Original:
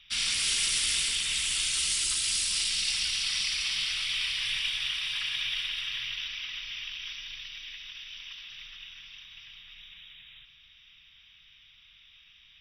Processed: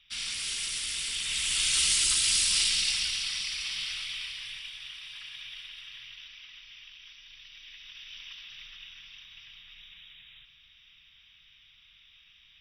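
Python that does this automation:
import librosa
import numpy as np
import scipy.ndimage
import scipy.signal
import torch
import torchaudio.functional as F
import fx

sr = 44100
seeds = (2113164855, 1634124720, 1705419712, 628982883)

y = fx.gain(x, sr, db=fx.line((0.95, -6.0), (1.76, 3.5), (2.64, 3.5), (3.42, -4.0), (3.93, -4.0), (4.68, -11.5), (7.17, -11.5), (8.15, -1.5)))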